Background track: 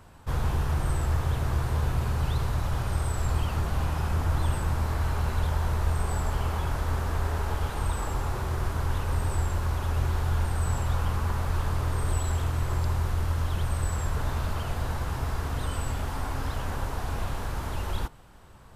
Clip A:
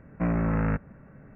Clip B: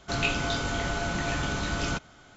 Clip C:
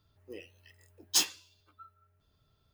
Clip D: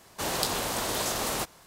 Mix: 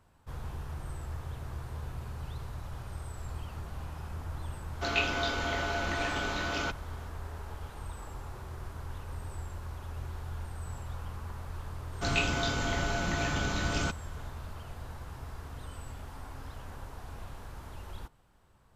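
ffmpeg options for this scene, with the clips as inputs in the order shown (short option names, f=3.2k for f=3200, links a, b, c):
-filter_complex "[2:a]asplit=2[a][b];[0:a]volume=-13dB[c];[a]highpass=290,lowpass=5k,atrim=end=2.36,asetpts=PTS-STARTPTS,volume=-1dB,afade=t=in:d=0.004:c=hsin,afade=t=out:st=2.356:d=0.004:c=hsin,adelay=208593S[d];[b]atrim=end=2.36,asetpts=PTS-STARTPTS,volume=-2dB,afade=t=in:d=0.004:c=hsin,afade=t=out:st=2.356:d=0.004:c=hsin,adelay=11930[e];[c][d][e]amix=inputs=3:normalize=0"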